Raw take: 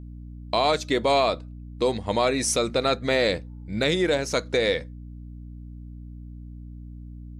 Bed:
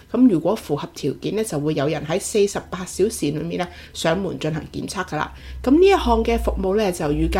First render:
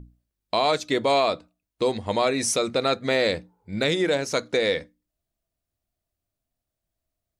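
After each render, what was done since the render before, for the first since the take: hum notches 60/120/180/240/300 Hz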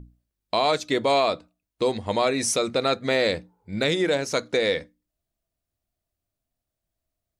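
no audible change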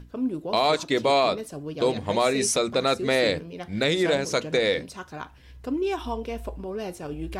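add bed -13 dB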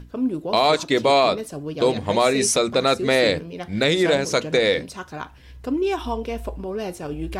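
trim +4 dB

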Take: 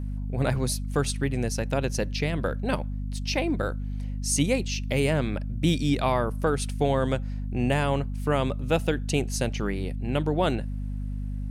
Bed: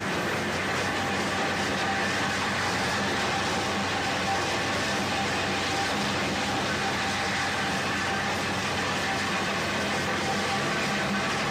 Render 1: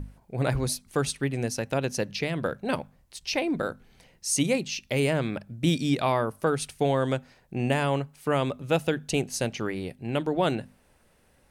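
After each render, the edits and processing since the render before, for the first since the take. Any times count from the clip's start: hum notches 50/100/150/200/250 Hz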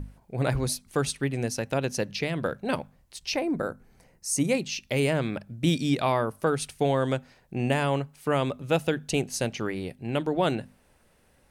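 3.36–4.49 s: peaking EQ 3.3 kHz -13 dB 0.96 oct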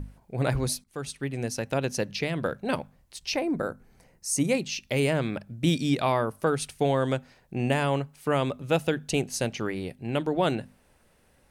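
0.84–1.91 s: fade in equal-power, from -16 dB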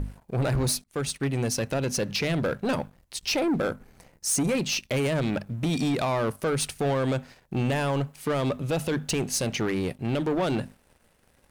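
peak limiter -19.5 dBFS, peak gain reduction 8.5 dB; waveshaping leveller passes 2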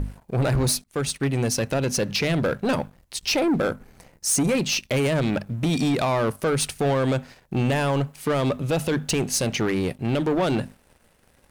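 trim +3.5 dB

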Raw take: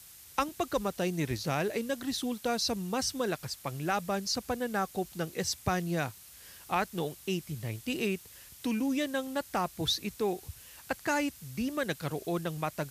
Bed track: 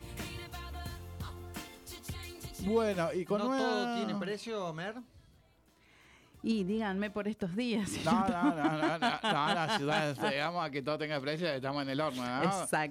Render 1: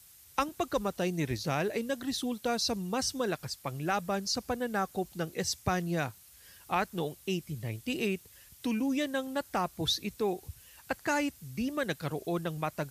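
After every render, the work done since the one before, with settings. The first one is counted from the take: noise reduction 6 dB, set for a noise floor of -53 dBFS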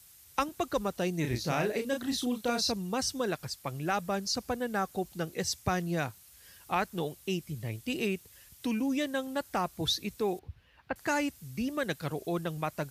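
1.21–2.72 s: doubling 33 ms -5 dB; 10.39–10.96 s: distance through air 350 m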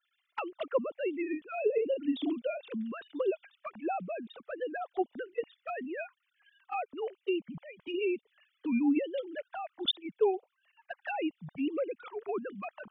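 formants replaced by sine waves; touch-sensitive flanger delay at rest 2.9 ms, full sweep at -28.5 dBFS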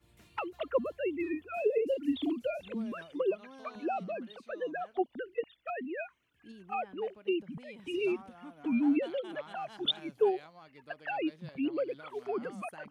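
add bed track -19.5 dB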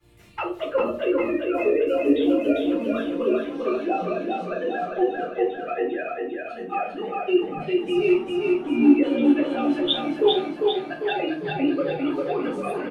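feedback delay 399 ms, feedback 54%, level -3 dB; simulated room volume 200 m³, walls furnished, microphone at 3.9 m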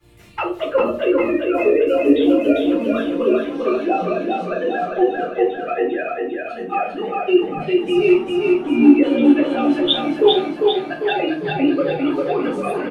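trim +5.5 dB; peak limiter -1 dBFS, peak gain reduction 2 dB

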